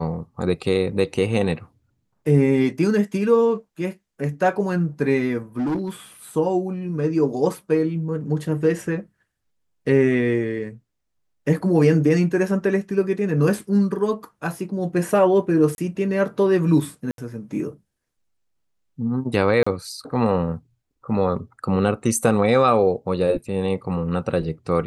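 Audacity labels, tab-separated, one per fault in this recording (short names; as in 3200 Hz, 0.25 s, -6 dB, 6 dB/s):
5.570000	5.900000	clipped -20 dBFS
15.750000	15.780000	gap 31 ms
17.110000	17.180000	gap 72 ms
19.630000	19.660000	gap 35 ms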